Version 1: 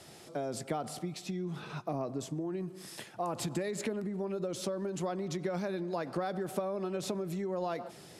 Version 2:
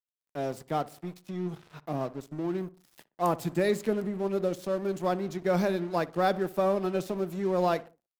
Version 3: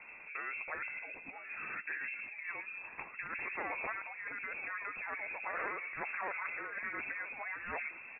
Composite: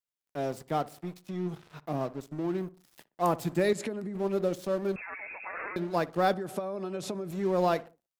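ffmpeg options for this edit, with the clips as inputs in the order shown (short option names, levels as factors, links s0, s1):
-filter_complex "[0:a]asplit=2[s0][s1];[1:a]asplit=4[s2][s3][s4][s5];[s2]atrim=end=3.732[s6];[s0]atrim=start=3.728:end=4.152[s7];[s3]atrim=start=4.148:end=4.962[s8];[2:a]atrim=start=4.958:end=5.762[s9];[s4]atrim=start=5.758:end=6.342[s10];[s1]atrim=start=6.338:end=7.312[s11];[s5]atrim=start=7.308[s12];[s6][s7]acrossfade=d=0.004:c1=hsin:c2=hsin[s13];[s13][s8]acrossfade=d=0.004:c1=hsin:c2=hsin[s14];[s14][s9]acrossfade=d=0.004:c1=hsin:c2=hsin[s15];[s15][s10]acrossfade=d=0.004:c1=hsin:c2=hsin[s16];[s16][s11]acrossfade=d=0.004:c1=hsin:c2=hsin[s17];[s17][s12]acrossfade=d=0.004:c1=hsin:c2=hsin"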